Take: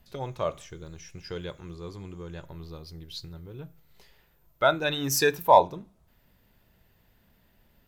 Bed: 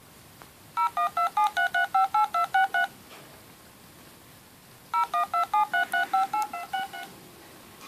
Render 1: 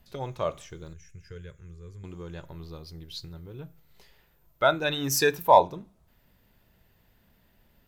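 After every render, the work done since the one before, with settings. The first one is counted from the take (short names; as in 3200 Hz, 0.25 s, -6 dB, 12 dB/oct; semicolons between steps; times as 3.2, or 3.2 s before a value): 0.93–2.04 EQ curve 110 Hz 0 dB, 310 Hz -17 dB, 440 Hz -8 dB, 800 Hz -25 dB, 1600 Hz -6 dB, 2300 Hz -9 dB, 4300 Hz -19 dB, 6800 Hz -4 dB, 13000 Hz -10 dB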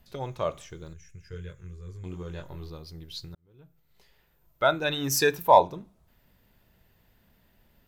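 1.29–2.7 doubler 22 ms -3 dB; 3.35–5.16 fade in equal-power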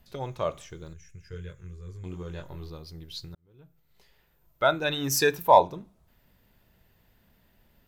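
nothing audible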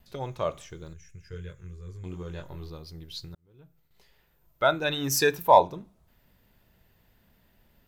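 gate with hold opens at -59 dBFS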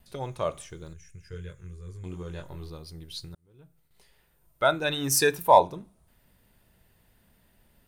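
bell 9300 Hz +14.5 dB 0.27 oct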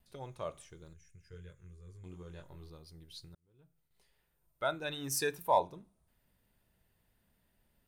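gain -11 dB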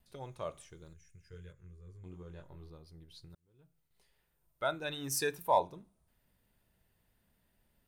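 1.52–3.3 high shelf 2600 Hz -8 dB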